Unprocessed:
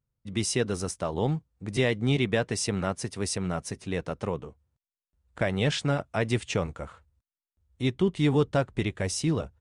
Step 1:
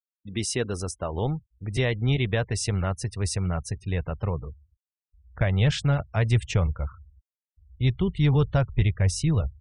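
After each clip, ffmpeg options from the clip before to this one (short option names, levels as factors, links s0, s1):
-af "asubboost=boost=10.5:cutoff=85,afftfilt=real='re*gte(hypot(re,im),0.00794)':imag='im*gte(hypot(re,im),0.00794)':win_size=1024:overlap=0.75"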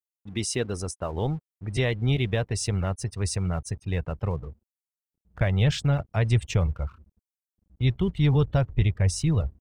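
-filter_complex "[0:a]adynamicequalizer=threshold=0.00708:dfrequency=1500:dqfactor=1.1:tfrequency=1500:tqfactor=1.1:attack=5:release=100:ratio=0.375:range=2.5:mode=cutabove:tftype=bell,acrossover=split=5200[s0][s1];[s0]aeval=exprs='sgn(val(0))*max(abs(val(0))-0.00237,0)':c=same[s2];[s2][s1]amix=inputs=2:normalize=0"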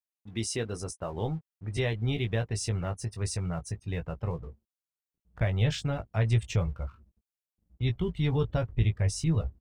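-filter_complex "[0:a]asplit=2[s0][s1];[s1]adelay=18,volume=0.447[s2];[s0][s2]amix=inputs=2:normalize=0,volume=0.562"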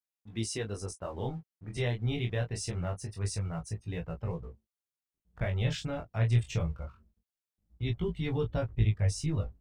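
-af "flanger=delay=17.5:depth=7.6:speed=0.24"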